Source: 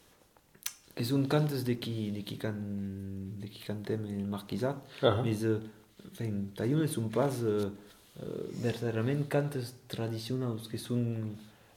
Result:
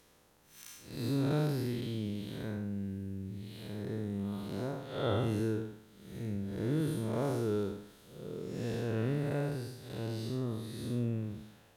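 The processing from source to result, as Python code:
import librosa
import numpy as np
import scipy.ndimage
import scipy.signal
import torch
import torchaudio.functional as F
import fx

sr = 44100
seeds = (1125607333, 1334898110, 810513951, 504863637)

y = fx.spec_blur(x, sr, span_ms=202.0)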